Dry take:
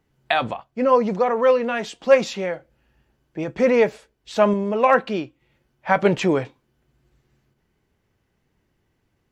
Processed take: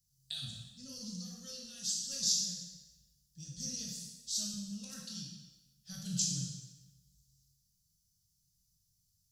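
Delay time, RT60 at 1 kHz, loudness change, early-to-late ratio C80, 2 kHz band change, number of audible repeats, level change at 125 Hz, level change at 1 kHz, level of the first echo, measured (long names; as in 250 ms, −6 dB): no echo audible, 1.1 s, −16.5 dB, 4.0 dB, −34.0 dB, no echo audible, −12.0 dB, below −40 dB, no echo audible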